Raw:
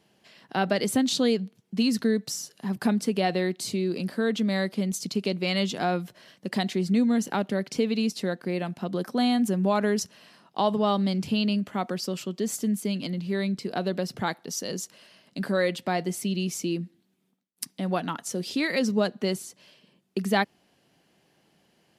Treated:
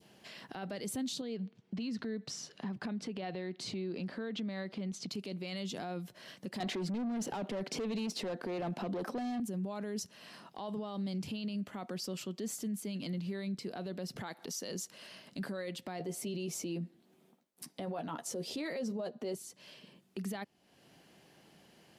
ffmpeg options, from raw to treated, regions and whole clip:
ffmpeg -i in.wav -filter_complex "[0:a]asettb=1/sr,asplit=3[link_01][link_02][link_03];[link_01]atrim=end=1.214[link_04];[link_02]atrim=start=1.21:end=5.11,asetpts=PTS-STARTPTS,afade=type=in:duration=0.004:curve=qsin,afade=type=out:start_time=3.896:duration=0.004:curve=qsin,lowpass=4000,acompressor=threshold=-29dB:ratio=5:attack=3.2:release=140:knee=1:detection=peak[link_05];[link_03]atrim=start=5.106[link_06];[link_04][link_05]acrossfade=duration=0.004:curve1=hsin:curve2=qsin[link_07];[link_07][link_06]acrossfade=duration=0.004:curve1=qsin:curve2=hsin,asettb=1/sr,asplit=3[link_08][link_09][link_10];[link_08]atrim=end=6.604[link_11];[link_09]atrim=start=6.6:end=9.4,asetpts=PTS-STARTPTS,afade=type=in:duration=0.004:curve=qsin,afade=type=out:start_time=2.796:duration=0.004:curve=qsin,highpass=140,tiltshelf=frequency=1500:gain=5.5,asplit=2[link_12][link_13];[link_13]highpass=frequency=720:poles=1,volume=24dB,asoftclip=type=tanh:threshold=-9.5dB[link_14];[link_12][link_14]amix=inputs=2:normalize=0,lowpass=frequency=4100:poles=1,volume=-6dB[link_15];[link_10]atrim=start=9.396[link_16];[link_11][link_15]acrossfade=duration=0.004:curve1=hsin:curve2=qsin[link_17];[link_17][link_16]acrossfade=duration=0.004:curve1=qsin:curve2=hsin,asettb=1/sr,asplit=3[link_18][link_19][link_20];[link_18]atrim=end=14.164[link_21];[link_19]atrim=start=14.16:end=14.75,asetpts=PTS-STARTPTS,afade=type=in:duration=0.004:curve=qsin,afade=type=out:start_time=0.586:duration=0.004:curve=qsin,highpass=frequency=200:poles=1,acompressor=mode=upward:threshold=-30dB:ratio=2.5:attack=3.2:release=140:knee=2.83:detection=peak[link_22];[link_20]atrim=start=14.746[link_23];[link_21][link_22]acrossfade=duration=0.004:curve1=hsin:curve2=qsin[link_24];[link_24][link_23]acrossfade=duration=0.004:curve1=qsin:curve2=hsin,asettb=1/sr,asplit=3[link_25][link_26][link_27];[link_25]atrim=end=15.994[link_28];[link_26]atrim=start=15.99:end=19.35,asetpts=PTS-STARTPTS,afade=type=in:duration=0.004:curve=qsin,afade=type=out:start_time=3.356:duration=0.004:curve=qsin,equalizer=frequency=610:width=0.69:gain=9.5,asplit=2[link_29][link_30];[link_30]adelay=13,volume=-8dB[link_31];[link_29][link_31]amix=inputs=2:normalize=0,atrim=end_sample=148176[link_32];[link_27]atrim=start=19.346[link_33];[link_28][link_32]acrossfade=duration=0.004:curve1=hsin:curve2=qsin[link_34];[link_34][link_33]acrossfade=duration=0.004:curve1=qsin:curve2=hsin,adynamicequalizer=threshold=0.0112:dfrequency=1500:dqfactor=0.82:tfrequency=1500:tqfactor=0.82:attack=5:release=100:ratio=0.375:range=2.5:mode=cutabove:tftype=bell,acompressor=threshold=-46dB:ratio=2,alimiter=level_in=10.5dB:limit=-24dB:level=0:latency=1:release=13,volume=-10.5dB,volume=3.5dB" out.wav

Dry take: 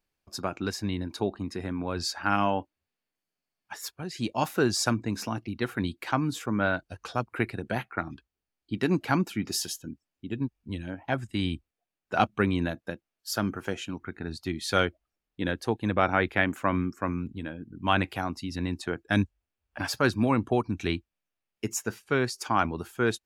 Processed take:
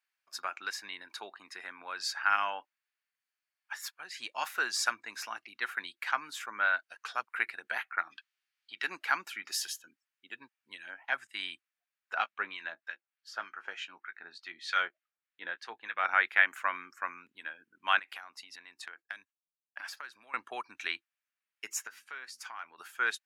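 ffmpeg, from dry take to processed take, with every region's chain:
ffmpeg -i in.wav -filter_complex "[0:a]asettb=1/sr,asplit=3[link_01][link_02][link_03];[link_01]atrim=end=8.114[link_04];[link_02]atrim=start=8.11:end=8.84,asetpts=PTS-STARTPTS,afade=type=in:duration=0.004:curve=qsin,afade=type=out:start_time=0.726:duration=0.004:curve=qsin,equalizer=frequency=3500:width=0.53:gain=10,acompressor=threshold=-38dB:ratio=2:attack=3.2:release=140:knee=1:detection=peak[link_05];[link_03]atrim=start=8.836[link_06];[link_04][link_05]acrossfade=duration=0.004:curve1=hsin:curve2=qsin[link_07];[link_07][link_06]acrossfade=duration=0.004:curve1=qsin:curve2=hsin,asettb=1/sr,asplit=3[link_08][link_09][link_10];[link_08]atrim=end=12.144[link_11];[link_09]atrim=start=12.14:end=16.05,asetpts=PTS-STARTPTS,afade=type=in:duration=0.004:curve=qsin,afade=type=out:start_time=3.906:duration=0.004:curve=qsin,lowpass=4800,acrossover=split=1200[link_12][link_13];[link_12]aeval=exprs='val(0)*(1-0.7/2+0.7/2*cos(2*PI*3.3*n/s))':channel_layout=same[link_14];[link_13]aeval=exprs='val(0)*(1-0.7/2-0.7/2*cos(2*PI*3.3*n/s))':channel_layout=same[link_15];[link_14][link_15]amix=inputs=2:normalize=0,asplit=2[link_16][link_17];[link_17]adelay=17,volume=-12dB[link_18];[link_16][link_18]amix=inputs=2:normalize=0,atrim=end_sample=172431[link_19];[link_10]atrim=start=16.046[link_20];[link_11][link_19]acrossfade=duration=0.004:curve1=hsin:curve2=qsin[link_21];[link_21][link_20]acrossfade=duration=0.004:curve1=qsin:curve2=hsin,asettb=1/sr,asplit=3[link_22][link_23][link_24];[link_22]atrim=end=17.994[link_25];[link_23]atrim=start=17.99:end=20.34,asetpts=PTS-STARTPTS,afade=type=in:duration=0.004:curve=qsin,afade=type=out:start_time=2.346:duration=0.004:curve=qsin,agate=range=-33dB:threshold=-44dB:ratio=3:release=100:detection=peak,acompressor=threshold=-36dB:ratio=12:attack=3.2:release=140:knee=1:detection=peak[link_26];[link_24]atrim=start=20.336[link_27];[link_25][link_26]acrossfade=duration=0.004:curve1=hsin:curve2=qsin[link_28];[link_28][link_27]acrossfade=duration=0.004:curve1=qsin:curve2=hsin,asettb=1/sr,asplit=3[link_29][link_30][link_31];[link_29]atrim=end=21.874[link_32];[link_30]atrim=start=21.87:end=22.78,asetpts=PTS-STARTPTS,afade=type=in:duration=0.004:curve=qsin,afade=type=out:start_time=0.906:duration=0.004:curve=qsin,bandreject=frequency=60:width_type=h:width=6,bandreject=frequency=120:width_type=h:width=6,bandreject=frequency=180:width_type=h:width=6,bandreject=frequency=240:width_type=h:width=6,bandreject=frequency=300:width_type=h:width=6,acompressor=threshold=-40dB:ratio=3:attack=3.2:release=140:knee=1:detection=peak,asplit=2[link_33][link_34];[link_34]adelay=12,volume=-12dB[link_35];[link_33][link_35]amix=inputs=2:normalize=0,atrim=end_sample=40131[link_36];[link_31]atrim=start=22.776[link_37];[link_32][link_36]acrossfade=duration=0.004:curve1=hsin:curve2=qsin[link_38];[link_38][link_37]acrossfade=duration=0.004:curve1=qsin:curve2=hsin,highpass=1100,equalizer=frequency=1700:width_type=o:width=1.4:gain=8.5,volume=-4.5dB" out.wav

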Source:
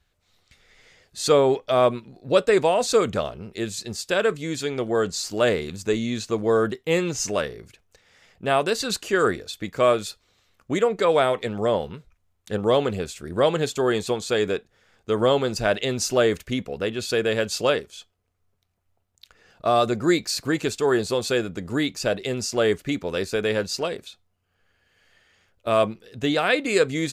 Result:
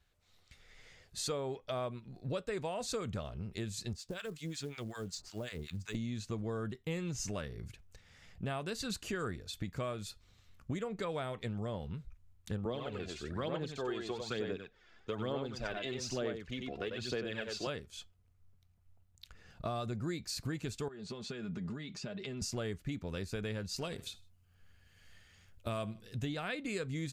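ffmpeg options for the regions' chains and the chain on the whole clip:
ffmpeg -i in.wav -filter_complex "[0:a]asettb=1/sr,asplit=3[link_01][link_02][link_03];[link_01]atrim=end=3.934[link_04];[link_02]atrim=start=3.93:end=5.95,asetpts=PTS-STARTPTS,afade=type=in:duration=0.004:curve=qsin,afade=type=out:start_time=2.016:duration=0.004:curve=qsin,acrossover=split=740|2200|7700[link_05][link_06][link_07][link_08];[link_05]acompressor=threshold=-33dB:ratio=3[link_09];[link_06]acompressor=threshold=-40dB:ratio=3[link_10];[link_07]acompressor=threshold=-35dB:ratio=3[link_11];[link_08]acompressor=threshold=-54dB:ratio=3[link_12];[link_09][link_10][link_11][link_12]amix=inputs=4:normalize=0,acrossover=split=880[link_13][link_14];[link_13]aeval=exprs='val(0)*(1-1/2+1/2*cos(2*PI*5.4*n/s))':channel_layout=same[link_15];[link_14]aeval=exprs='val(0)*(1-1/2-1/2*cos(2*PI*5.4*n/s))':channel_layout=same[link_16];[link_15][link_16]amix=inputs=2:normalize=0,acrusher=bits=6:mode=log:mix=0:aa=0.000001[link_17];[link_03]atrim=start=5.946[link_18];[link_04][link_17]acrossfade=duration=0.004:curve1=hsin:curve2=qsin[link_19];[link_19][link_18]acrossfade=duration=0.004:curve1=qsin:curve2=hsin,asettb=1/sr,asplit=3[link_20][link_21][link_22];[link_20]atrim=end=12.654[link_23];[link_21]atrim=start=12.65:end=17.67,asetpts=PTS-STARTPTS,afade=type=in:duration=0.004:curve=qsin,afade=type=out:start_time=5.016:duration=0.004:curve=qsin,acrossover=split=220 6000:gain=0.224 1 0.1[link_24][link_25][link_26];[link_24][link_25][link_26]amix=inputs=3:normalize=0,aecho=1:1:94:0.501,atrim=end_sample=221382,aphaser=in_gain=1:out_gain=1:delay=3:decay=0.54:speed=1.1:type=sinusoidal[link_27];[link_22]atrim=start=17.666[link_28];[link_23][link_27]acrossfade=duration=0.004:curve1=hsin:curve2=qsin[link_29];[link_29][link_28]acrossfade=duration=0.004:curve1=qsin:curve2=hsin,asettb=1/sr,asplit=3[link_30][link_31][link_32];[link_30]atrim=end=20.884[link_33];[link_31]atrim=start=20.88:end=22.42,asetpts=PTS-STARTPTS,afade=type=in:duration=0.004:curve=qsin,afade=type=out:start_time=1.536:duration=0.004:curve=qsin,acompressor=threshold=-33dB:ratio=16:attack=3.2:release=140:knee=1:detection=peak,highpass=130,lowpass=4900,aecho=1:1:4.9:0.53,atrim=end_sample=67914[link_34];[link_32]atrim=start=22.416[link_35];[link_33][link_34]acrossfade=duration=0.004:curve1=hsin:curve2=qsin[link_36];[link_36][link_35]acrossfade=duration=0.004:curve1=qsin:curve2=hsin,asettb=1/sr,asplit=3[link_37][link_38][link_39];[link_37]atrim=end=23.764[link_40];[link_38]atrim=start=23.76:end=26.25,asetpts=PTS-STARTPTS,afade=type=in:duration=0.004:curve=qsin,afade=type=out:start_time=2.486:duration=0.004:curve=qsin,highshelf=frequency=4500:gain=7.5,aecho=1:1:77|154:0.0841|0.0244,atrim=end_sample=109809[link_41];[link_39]atrim=start=26.246[link_42];[link_40][link_41]acrossfade=duration=0.004:curve1=hsin:curve2=qsin[link_43];[link_43][link_42]acrossfade=duration=0.004:curve1=qsin:curve2=hsin,asubboost=boost=4.5:cutoff=190,acompressor=threshold=-32dB:ratio=4,volume=-5dB" out.wav

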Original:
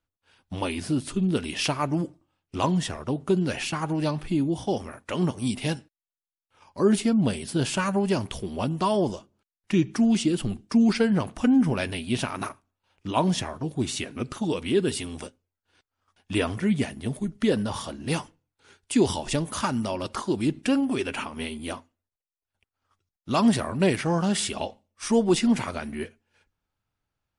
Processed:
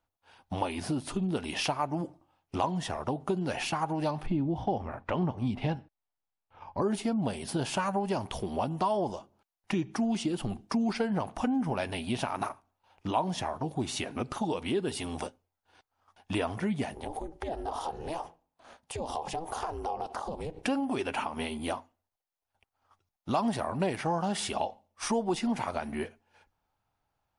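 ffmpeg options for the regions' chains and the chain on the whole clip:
ffmpeg -i in.wav -filter_complex "[0:a]asettb=1/sr,asplit=3[link_01][link_02][link_03];[link_01]atrim=end=4.264[link_04];[link_02]atrim=start=4.26:end=6.82,asetpts=PTS-STARTPTS,afade=type=in:duration=0.004:curve=qsin,afade=type=out:start_time=2.556:duration=0.004:curve=qsin,lowpass=3100,lowshelf=frequency=170:gain=11.5[link_05];[link_03]atrim=start=6.816[link_06];[link_04][link_05]acrossfade=duration=0.004:curve1=hsin:curve2=qsin[link_07];[link_07][link_06]acrossfade=duration=0.004:curve1=qsin:curve2=hsin,asettb=1/sr,asplit=3[link_08][link_09][link_10];[link_08]atrim=end=16.944[link_11];[link_09]atrim=start=16.94:end=20.65,asetpts=PTS-STARTPTS,afade=type=in:duration=0.004:curve=qsin,afade=type=out:start_time=3.706:duration=0.004:curve=qsin,equalizer=frequency=670:width=2.1:gain=10.5,acompressor=threshold=-33dB:ratio=5:attack=3.2:release=140:knee=1:detection=peak,aeval=exprs='val(0)*sin(2*PI*160*n/s)':channel_layout=same[link_12];[link_10]atrim=start=20.646[link_13];[link_11][link_12]acrossfade=duration=0.004:curve1=hsin:curve2=qsin[link_14];[link_14][link_13]acrossfade=duration=0.004:curve1=qsin:curve2=hsin,equalizer=frequency=800:width_type=o:width=0.91:gain=11.5,acompressor=threshold=-31dB:ratio=2.5,equalizer=frequency=7800:width_type=o:width=0.26:gain=-4" out.wav

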